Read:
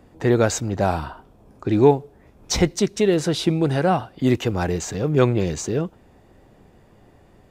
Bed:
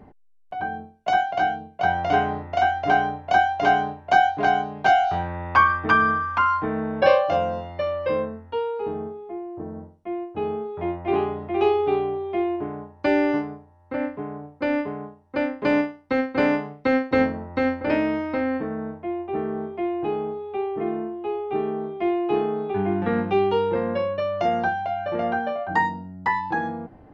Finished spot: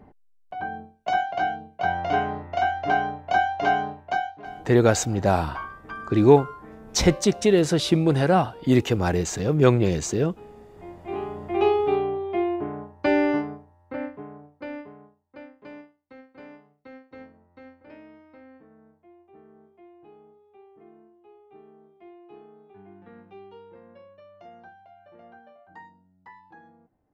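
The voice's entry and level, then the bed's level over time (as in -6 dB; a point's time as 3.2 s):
4.45 s, 0.0 dB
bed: 4 s -3 dB
4.45 s -19 dB
10.64 s -19 dB
11.57 s -0.5 dB
13.55 s -0.5 dB
15.97 s -25 dB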